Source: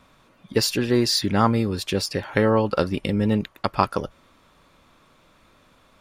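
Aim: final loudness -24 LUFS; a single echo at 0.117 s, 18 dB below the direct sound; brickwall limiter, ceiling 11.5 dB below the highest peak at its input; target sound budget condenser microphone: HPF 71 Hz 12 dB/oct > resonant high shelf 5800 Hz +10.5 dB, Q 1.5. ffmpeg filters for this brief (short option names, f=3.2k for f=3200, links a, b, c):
-af "alimiter=limit=-13dB:level=0:latency=1,highpass=71,highshelf=f=5.8k:t=q:w=1.5:g=10.5,aecho=1:1:117:0.126,volume=-0.5dB"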